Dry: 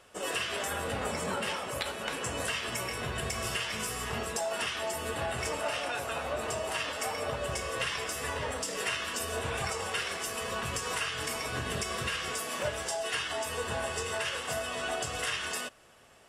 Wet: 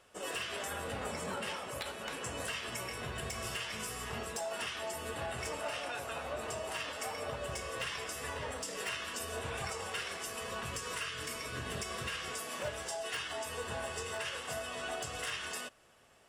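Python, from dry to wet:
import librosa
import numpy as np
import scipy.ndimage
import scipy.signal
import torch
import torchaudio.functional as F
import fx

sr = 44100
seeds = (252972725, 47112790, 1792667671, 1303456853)

y = fx.peak_eq(x, sr, hz=790.0, db=fx.line((10.73, -8.5), (11.6, -14.5)), octaves=0.26, at=(10.73, 11.6), fade=0.02)
y = 10.0 ** (-23.0 / 20.0) * (np.abs((y / 10.0 ** (-23.0 / 20.0) + 3.0) % 4.0 - 2.0) - 1.0)
y = F.gain(torch.from_numpy(y), -5.5).numpy()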